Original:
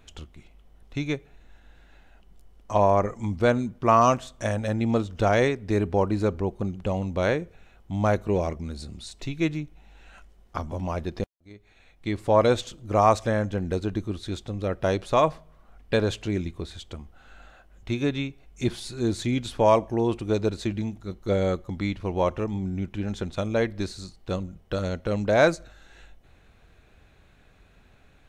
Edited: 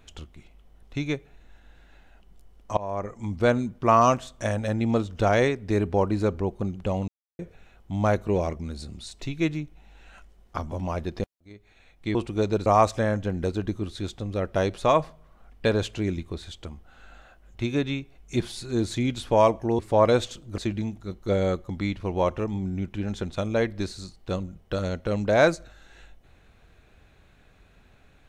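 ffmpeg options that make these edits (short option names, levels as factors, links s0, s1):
-filter_complex "[0:a]asplit=8[s0][s1][s2][s3][s4][s5][s6][s7];[s0]atrim=end=2.77,asetpts=PTS-STARTPTS,afade=t=out:st=2.766:d=0.004:c=hsin:silence=0.1[s8];[s1]atrim=start=2.77:end=7.08,asetpts=PTS-STARTPTS,afade=t=in:d=0.7:silence=0.1,afade=t=out:st=4.306:d=0.004:c=hsin[s9];[s2]atrim=start=7.08:end=7.39,asetpts=PTS-STARTPTS,volume=0[s10];[s3]atrim=start=7.39:end=12.152,asetpts=PTS-STARTPTS,afade=t=in:d=0.004:c=hsin[s11];[s4]atrim=start=20.068:end=20.582[s12];[s5]atrim=start=12.938:end=20.072[s13];[s6]atrim=start=12.148:end=12.942[s14];[s7]atrim=start=20.578[s15];[s8][s9][s10][s11]concat=n=4:v=0:a=1[s16];[s16][s12]acrossfade=d=0.004:c1=hsin:c2=hsin[s17];[s17][s13]acrossfade=d=0.004:c1=hsin:c2=hsin[s18];[s18][s14]acrossfade=d=0.004:c1=hsin:c2=hsin[s19];[s19][s15]acrossfade=d=0.004:c1=hsin:c2=hsin"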